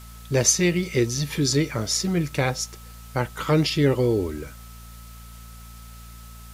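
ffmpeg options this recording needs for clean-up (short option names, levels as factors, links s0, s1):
-af "bandreject=f=57.5:t=h:w=4,bandreject=f=115:t=h:w=4,bandreject=f=172.5:t=h:w=4,bandreject=f=230:t=h:w=4,bandreject=f=1300:w=30,afwtdn=0.0035"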